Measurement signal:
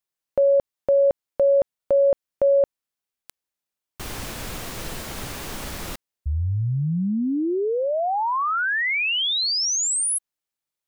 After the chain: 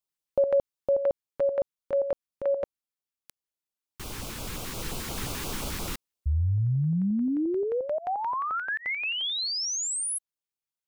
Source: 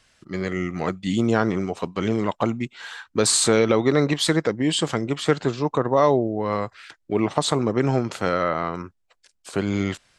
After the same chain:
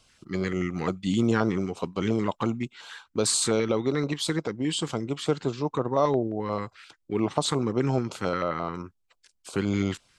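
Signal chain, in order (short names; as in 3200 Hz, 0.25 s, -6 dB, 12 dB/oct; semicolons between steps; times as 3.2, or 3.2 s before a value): vocal rider within 5 dB 2 s; LFO notch square 5.7 Hz 640–1800 Hz; gain -4.5 dB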